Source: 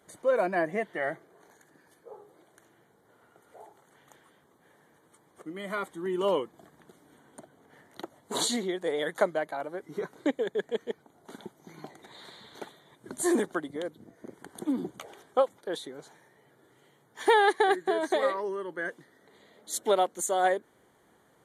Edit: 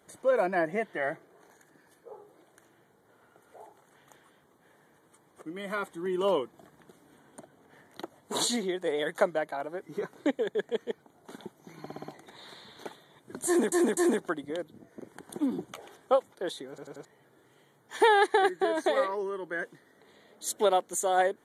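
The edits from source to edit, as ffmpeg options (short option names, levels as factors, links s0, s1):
-filter_complex "[0:a]asplit=11[s0][s1][s2][s3][s4][s5][s6][s7][s8][s9][s10];[s0]atrim=end=11.862[s11];[s1]atrim=start=11.798:end=11.862[s12];[s2]atrim=start=11.798:end=11.862[s13];[s3]atrim=start=11.798:end=11.862[s14];[s4]atrim=start=11.798:end=13.482[s15];[s5]atrim=start=13.228:end=13.482[s16];[s6]atrim=start=13.228:end=16.042[s17];[s7]atrim=start=15.948:end=16.042[s18];[s8]atrim=start=15.948:end=16.042[s19];[s9]atrim=start=15.948:end=16.042[s20];[s10]atrim=start=16.308[s21];[s11][s12]acrossfade=d=0.004:c1=hsin:c2=hsin[s22];[s22][s13]acrossfade=d=0.004:c1=hsin:c2=hsin[s23];[s23][s14]acrossfade=d=0.004:c1=hsin:c2=hsin[s24];[s24][s15]acrossfade=d=0.004:c1=hsin:c2=hsin[s25];[s25][s16]acrossfade=d=0.004:c1=hsin:c2=hsin[s26];[s26][s17]acrossfade=d=0.004:c1=hsin:c2=hsin[s27];[s27][s18]acrossfade=d=0.004:c1=hsin:c2=hsin[s28];[s28][s19]acrossfade=d=0.004:c1=hsin:c2=hsin[s29];[s29][s20]acrossfade=d=0.004:c1=hsin:c2=hsin[s30];[s30][s21]acrossfade=d=0.004:c1=hsin:c2=hsin"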